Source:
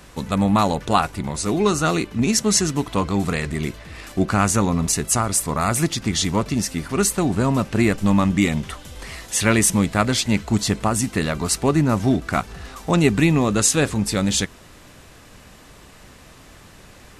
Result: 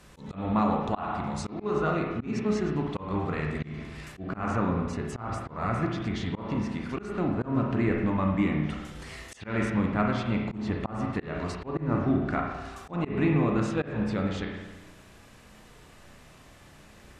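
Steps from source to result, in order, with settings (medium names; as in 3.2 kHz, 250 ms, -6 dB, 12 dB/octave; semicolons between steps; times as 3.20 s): low-pass that closes with the level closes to 2.1 kHz, closed at -17.5 dBFS; spring tank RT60 1.2 s, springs 33/52 ms, chirp 60 ms, DRR 0.5 dB; slow attack 177 ms; trim -9 dB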